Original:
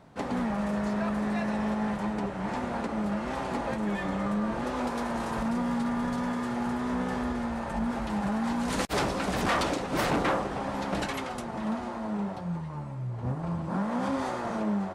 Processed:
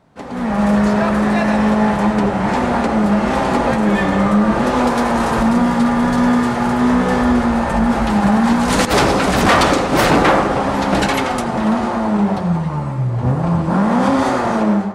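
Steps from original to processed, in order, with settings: level rider gain up to 16.5 dB; in parallel at -10.5 dB: hard clipper -11 dBFS, distortion -15 dB; on the sum: reverberation RT60 0.70 s, pre-delay 73 ms, DRR 7 dB; trim -3 dB

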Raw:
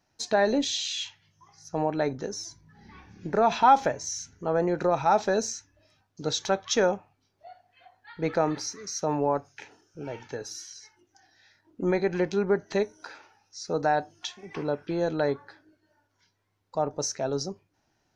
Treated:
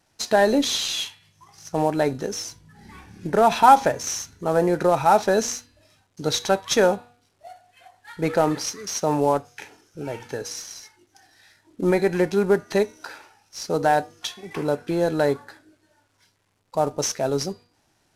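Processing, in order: CVSD coder 64 kbps; de-hum 241.6 Hz, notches 20; trim +5.5 dB

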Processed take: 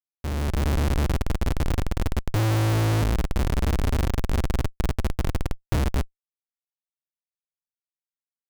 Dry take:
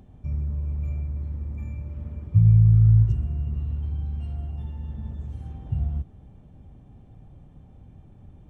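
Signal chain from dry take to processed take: reverb removal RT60 1.1 s; Schmitt trigger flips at -32.5 dBFS; level rider gain up to 6.5 dB

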